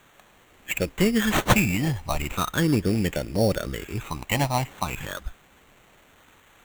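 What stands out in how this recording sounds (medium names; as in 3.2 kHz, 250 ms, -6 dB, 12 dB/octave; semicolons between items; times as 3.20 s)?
a quantiser's noise floor 10-bit, dither triangular; phasing stages 8, 0.39 Hz, lowest notch 430–1100 Hz; aliases and images of a low sample rate 5 kHz, jitter 0%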